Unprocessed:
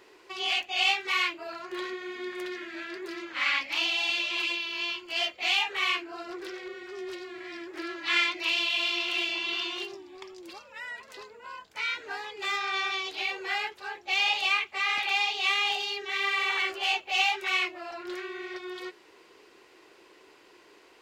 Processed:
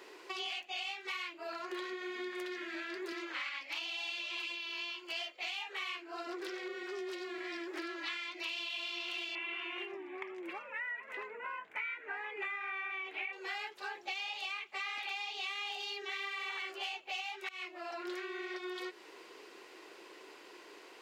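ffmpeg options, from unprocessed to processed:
ffmpeg -i in.wav -filter_complex "[0:a]asettb=1/sr,asplit=3[link_01][link_02][link_03];[link_01]atrim=end=3.124[link_04];[link_02]atrim=start=3.12:end=6.27,asetpts=PTS-STARTPTS,afade=type=in:duration=0.004:curve=qsin,afade=type=out:start_time=3.146:duration=0.004:curve=qsin,highpass=270[link_05];[link_03]atrim=start=6.266[link_06];[link_04][link_05]acrossfade=duration=0.004:curve1=hsin:curve2=qsin[link_07];[link_07][link_06]acrossfade=duration=0.004:curve1=qsin:curve2=hsin,asettb=1/sr,asplit=3[link_08][link_09][link_10];[link_08]atrim=end=9.354[link_11];[link_09]atrim=start=9.35:end=13.33,asetpts=PTS-STARTPTS,afade=type=in:duration=0.004:curve=qsin,afade=type=out:start_time=3.976:duration=0.004:curve=qsin,highshelf=frequency=3200:width_type=q:width=3:gain=-13.5[link_12];[link_10]atrim=start=13.326[link_13];[link_11][link_12]acrossfade=duration=0.004:curve1=hsin:curve2=qsin[link_14];[link_14][link_13]acrossfade=duration=0.004:curve1=qsin:curve2=hsin,asplit=2[link_15][link_16];[link_15]atrim=end=17.49,asetpts=PTS-STARTPTS,afade=type=out:start_time=17.486:duration=0.004:curve=hsin:silence=0.0794328[link_17];[link_16]atrim=start=17.49,asetpts=PTS-STARTPTS,afade=type=in:duration=0.68:silence=0.0794328[link_18];[link_17][link_18]concat=n=2:v=0:a=1,highpass=240,alimiter=limit=-18dB:level=0:latency=1:release=332,acompressor=threshold=-41dB:ratio=6,volume=2.5dB" out.wav

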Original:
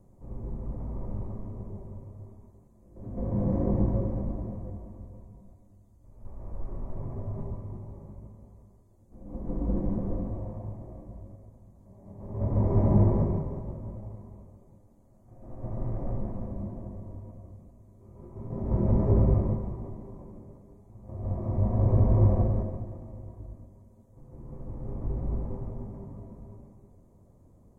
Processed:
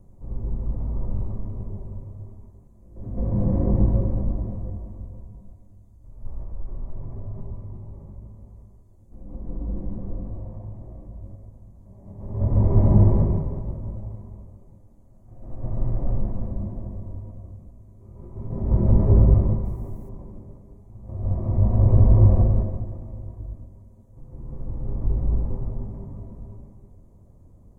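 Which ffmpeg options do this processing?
ffmpeg -i in.wav -filter_complex "[0:a]asettb=1/sr,asplit=3[link_01][link_02][link_03];[link_01]atrim=end=6.434[link_04];[link_02]atrim=start=6.43:end=11.23,asetpts=PTS-STARTPTS,afade=type=in:duration=0.004:curve=qsin,afade=type=out:start_time=4.796:duration=0.004:curve=qsin,acompressor=threshold=-46dB:ratio=1.5:attack=3.2:release=140:knee=1:detection=peak[link_05];[link_03]atrim=start=11.226[link_06];[link_04][link_05]acrossfade=duration=0.004:curve1=hsin:curve2=qsin[link_07];[link_07][link_06]acrossfade=duration=0.004:curve1=qsin:curve2=hsin,asettb=1/sr,asplit=3[link_08][link_09][link_10];[link_08]atrim=end=19.654[link_11];[link_09]atrim=start=19.65:end=20.09,asetpts=PTS-STARTPTS,afade=type=in:duration=0.004:curve=qsin,afade=type=out:start_time=0.436:duration=0.004:curve=qsin,aemphasis=mode=production:type=75fm[link_12];[link_10]atrim=start=20.086[link_13];[link_11][link_12]acrossfade=duration=0.004:curve1=hsin:curve2=qsin[link_14];[link_14][link_13]acrossfade=duration=0.004:curve1=qsin:curve2=hsin,lowshelf=frequency=110:gain=10,volume=1dB" out.wav

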